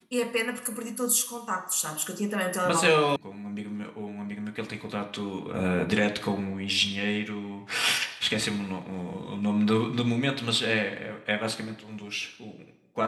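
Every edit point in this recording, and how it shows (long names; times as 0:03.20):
0:03.16: cut off before it has died away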